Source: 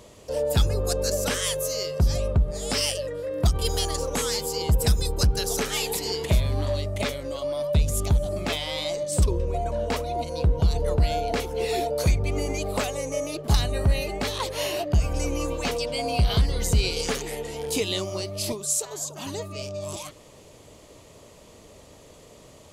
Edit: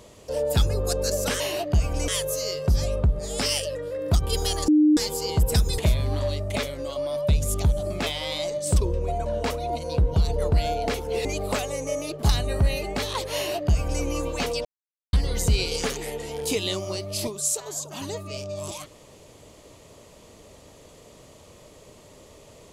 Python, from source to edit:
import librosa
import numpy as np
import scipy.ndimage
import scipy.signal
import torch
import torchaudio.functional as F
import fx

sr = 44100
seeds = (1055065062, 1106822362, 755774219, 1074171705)

y = fx.edit(x, sr, fx.bleep(start_s=4.0, length_s=0.29, hz=303.0, db=-13.5),
    fx.cut(start_s=5.1, length_s=1.14),
    fx.cut(start_s=11.71, length_s=0.79),
    fx.duplicate(start_s=14.6, length_s=0.68, to_s=1.4),
    fx.silence(start_s=15.9, length_s=0.48), tone=tone)